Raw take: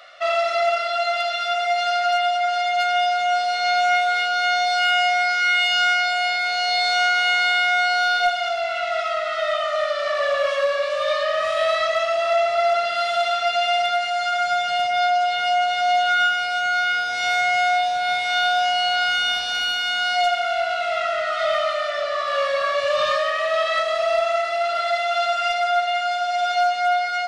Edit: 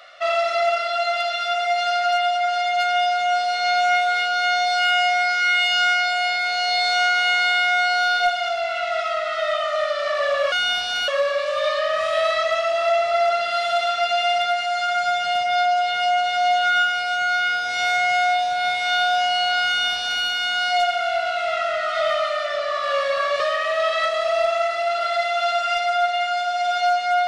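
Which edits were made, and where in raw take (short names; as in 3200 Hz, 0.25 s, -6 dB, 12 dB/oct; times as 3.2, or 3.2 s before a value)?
19.11–19.67 copy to 10.52
22.84–23.14 cut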